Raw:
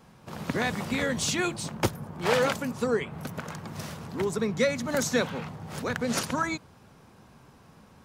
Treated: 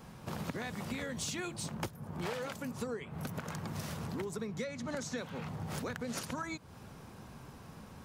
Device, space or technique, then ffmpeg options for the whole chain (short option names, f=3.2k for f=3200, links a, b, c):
ASMR close-microphone chain: -filter_complex "[0:a]lowshelf=f=150:g=4,acompressor=threshold=-38dB:ratio=10,highshelf=f=9.6k:g=4.5,asettb=1/sr,asplit=3[a][b][c];[a]atrim=end=4.644[d];[b]atrim=start=4.64:end=5.18,asetpts=PTS-STARTPTS,afade=t=in:d=0.004:c=qsin,afade=t=out:st=0.536:d=0.004:c=qsin,lowpass=7.4k[e];[c]atrim=start=5.176[f];[d][e]acrossfade=d=0.004:c1=hsin:c2=qsin[g];[g][f]acrossfade=d=0.004:c1=qsin:c2=hsin,volume=2dB"